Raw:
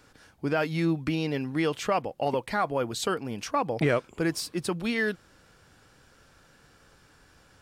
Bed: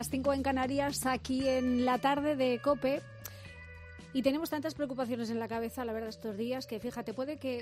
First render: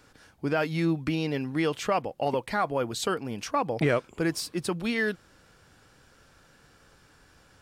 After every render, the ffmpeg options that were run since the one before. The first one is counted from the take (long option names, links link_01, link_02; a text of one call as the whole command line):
ffmpeg -i in.wav -af anull out.wav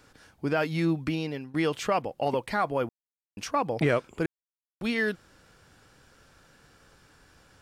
ffmpeg -i in.wav -filter_complex "[0:a]asplit=6[link_01][link_02][link_03][link_04][link_05][link_06];[link_01]atrim=end=1.54,asetpts=PTS-STARTPTS,afade=type=out:start_time=0.89:duration=0.65:curve=qsin:silence=0.188365[link_07];[link_02]atrim=start=1.54:end=2.89,asetpts=PTS-STARTPTS,afade=type=in:duration=0.004:curve=hsin:silence=0.188365,afade=type=out:start_time=1.346:duration=0.004:curve=hsin[link_08];[link_03]atrim=start=2.89:end=3.37,asetpts=PTS-STARTPTS,volume=0[link_09];[link_04]atrim=start=3.37:end=4.26,asetpts=PTS-STARTPTS,afade=type=in:duration=0.004:curve=hsin,afade=type=out:start_time=0.886:duration=0.004:curve=hsin[link_10];[link_05]atrim=start=4.26:end=4.81,asetpts=PTS-STARTPTS,volume=0[link_11];[link_06]atrim=start=4.81,asetpts=PTS-STARTPTS,afade=type=in:duration=0.004:curve=hsin[link_12];[link_07][link_08][link_09][link_10][link_11][link_12]concat=n=6:v=0:a=1" out.wav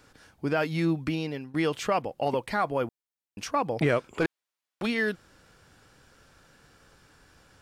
ffmpeg -i in.wav -filter_complex "[0:a]asplit=3[link_01][link_02][link_03];[link_01]afade=type=out:start_time=4.13:duration=0.02[link_04];[link_02]asplit=2[link_05][link_06];[link_06]highpass=frequency=720:poles=1,volume=18dB,asoftclip=type=tanh:threshold=-16.5dB[link_07];[link_05][link_07]amix=inputs=2:normalize=0,lowpass=frequency=3700:poles=1,volume=-6dB,afade=type=in:start_time=4.13:duration=0.02,afade=type=out:start_time=4.85:duration=0.02[link_08];[link_03]afade=type=in:start_time=4.85:duration=0.02[link_09];[link_04][link_08][link_09]amix=inputs=3:normalize=0" out.wav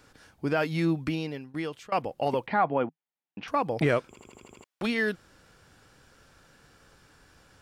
ffmpeg -i in.wav -filter_complex "[0:a]asettb=1/sr,asplit=3[link_01][link_02][link_03];[link_01]atrim=end=2.474[link_04];[link_02]atrim=start=2.47:end=3.48,asetpts=PTS-STARTPTS,afade=type=in:duration=0.004:curve=qsin,afade=type=out:start_time=1.006:duration=0.004:curve=qsin,highpass=150,equalizer=frequency=160:width_type=q:width=4:gain=8,equalizer=frequency=260:width_type=q:width=4:gain=4,equalizer=frequency=800:width_type=q:width=4:gain=6,lowpass=frequency=3200:width=0.5412,lowpass=frequency=3200:width=1.3066[link_05];[link_03]atrim=start=3.476[link_06];[link_04][link_05]acrossfade=duration=0.004:curve1=hsin:curve2=qsin[link_07];[link_07][link_06]acrossfade=duration=0.004:curve1=qsin:curve2=hsin,asplit=9[link_08][link_09][link_10][link_11][link_12][link_13][link_14][link_15][link_16];[link_08]atrim=end=1.92,asetpts=PTS-STARTPTS,afade=type=out:start_time=0.88:duration=1.04:curve=qsin:silence=0.0794328[link_17];[link_09]atrim=start=1.92:end=4.162,asetpts=PTS-STARTPTS,afade=type=in:duration=0.004:curve=hsin:silence=0.0794328[link_18];[link_10]atrim=start=4.078:end=4.162[link_19];[link_11]atrim=start=4.078:end=4.162[link_20];[link_12]atrim=start=4.078:end=4.162[link_21];[link_13]atrim=start=4.078:end=4.162[link_22];[link_14]atrim=start=4.078:end=4.162[link_23];[link_15]atrim=start=4.078:end=4.162[link_24];[link_16]atrim=start=4.638[link_25];[link_17][link_18]concat=n=2:v=0:a=1[link_26];[link_26][link_19]acrossfade=duration=0.004:curve1=hsin:curve2=hsin[link_27];[link_27][link_20]acrossfade=duration=0.004:curve1=hsin:curve2=hsin[link_28];[link_28][link_21]acrossfade=duration=0.004:curve1=hsin:curve2=hsin[link_29];[link_29][link_22]acrossfade=duration=0.004:curve1=hsin:curve2=hsin[link_30];[link_30][link_23]acrossfade=duration=0.004:curve1=hsin:curve2=hsin[link_31];[link_31][link_24]acrossfade=duration=0.004:curve1=hsin:curve2=hsin[link_32];[link_32][link_25]acrossfade=duration=0.004:curve1=hsin:curve2=hsin" out.wav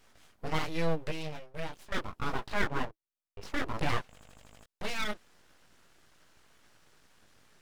ffmpeg -i in.wav -af "flanger=delay=18:depth=2:speed=1.3,aeval=exprs='abs(val(0))':channel_layout=same" out.wav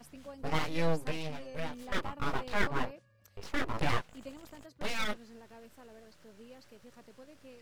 ffmpeg -i in.wav -i bed.wav -filter_complex "[1:a]volume=-17.5dB[link_01];[0:a][link_01]amix=inputs=2:normalize=0" out.wav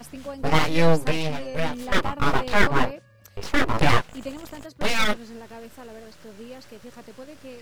ffmpeg -i in.wav -af "volume=12dB,alimiter=limit=-2dB:level=0:latency=1" out.wav